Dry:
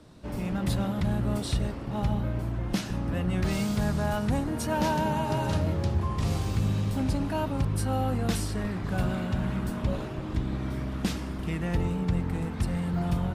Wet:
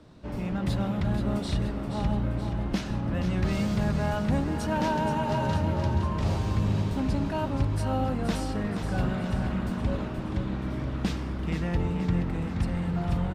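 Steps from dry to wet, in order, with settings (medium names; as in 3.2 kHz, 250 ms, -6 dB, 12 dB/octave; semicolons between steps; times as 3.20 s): peaking EQ 12 kHz -11 dB 1.3 oct; on a send: feedback delay 476 ms, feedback 56%, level -8 dB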